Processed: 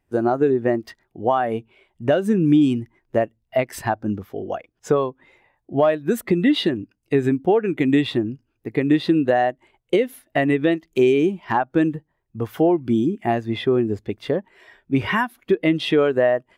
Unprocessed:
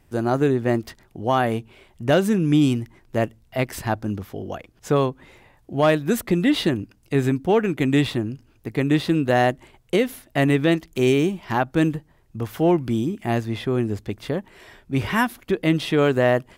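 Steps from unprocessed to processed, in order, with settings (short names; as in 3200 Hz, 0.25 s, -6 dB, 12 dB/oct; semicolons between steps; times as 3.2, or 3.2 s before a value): low shelf 290 Hz -11 dB; compressor 6:1, threshold -26 dBFS, peak gain reduction 11 dB; spectral expander 1.5:1; gain +7 dB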